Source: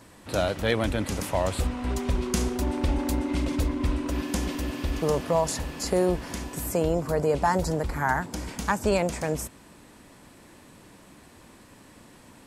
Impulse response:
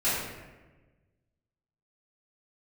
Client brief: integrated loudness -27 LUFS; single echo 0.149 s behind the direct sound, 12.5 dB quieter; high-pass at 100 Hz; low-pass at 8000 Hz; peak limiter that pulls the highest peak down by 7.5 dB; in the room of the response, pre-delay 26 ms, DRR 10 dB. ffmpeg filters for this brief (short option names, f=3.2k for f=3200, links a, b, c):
-filter_complex "[0:a]highpass=100,lowpass=8k,alimiter=limit=-18dB:level=0:latency=1,aecho=1:1:149:0.237,asplit=2[a][b];[1:a]atrim=start_sample=2205,adelay=26[c];[b][c]afir=irnorm=-1:irlink=0,volume=-22dB[d];[a][d]amix=inputs=2:normalize=0,volume=2.5dB"